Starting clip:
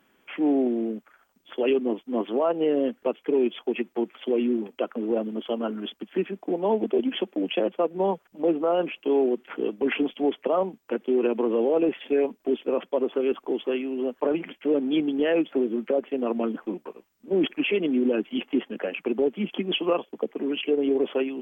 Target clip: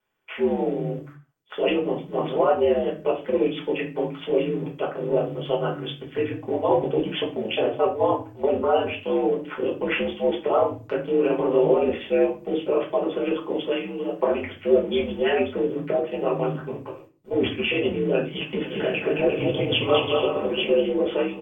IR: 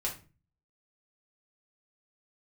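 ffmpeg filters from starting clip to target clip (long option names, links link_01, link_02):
-filter_complex "[0:a]agate=range=-16dB:threshold=-50dB:ratio=16:detection=peak,equalizer=frequency=270:width=2.7:gain=-10.5,aeval=exprs='val(0)*sin(2*PI*74*n/s)':channel_layout=same,asplit=3[link_01][link_02][link_03];[link_01]afade=type=out:start_time=18.63:duration=0.02[link_04];[link_02]aecho=1:1:220|352|431.2|478.7|507.2:0.631|0.398|0.251|0.158|0.1,afade=type=in:start_time=18.63:duration=0.02,afade=type=out:start_time=20.79:duration=0.02[link_05];[link_03]afade=type=in:start_time=20.79:duration=0.02[link_06];[link_04][link_05][link_06]amix=inputs=3:normalize=0[link_07];[1:a]atrim=start_sample=2205,afade=type=out:start_time=0.39:duration=0.01,atrim=end_sample=17640[link_08];[link_07][link_08]afir=irnorm=-1:irlink=0,volume=4dB"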